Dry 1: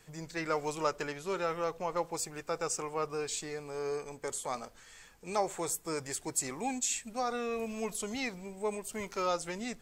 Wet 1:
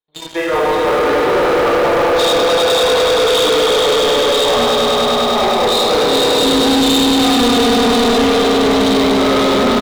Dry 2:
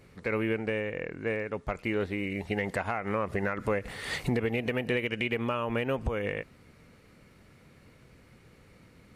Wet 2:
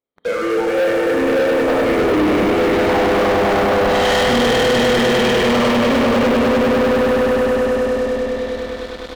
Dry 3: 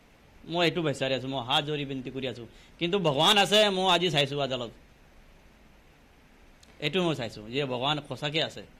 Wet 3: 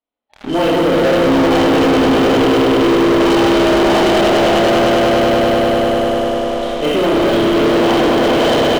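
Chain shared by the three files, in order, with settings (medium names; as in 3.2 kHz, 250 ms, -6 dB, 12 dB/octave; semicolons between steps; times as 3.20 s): knee-point frequency compression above 2.9 kHz 4:1; gate with hold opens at -45 dBFS; high-order bell 530 Hz +11.5 dB 2.6 oct; reverse; compression 6:1, threshold -28 dBFS; reverse; peak limiter -25 dBFS; spectral noise reduction 17 dB; doubling 30 ms -10.5 dB; on a send: echo with a slow build-up 100 ms, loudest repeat 5, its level -5.5 dB; on the sum: Schroeder reverb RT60 1.4 s, combs from 26 ms, DRR -4 dB; waveshaping leveller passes 5; tape noise reduction on one side only encoder only; trim +1.5 dB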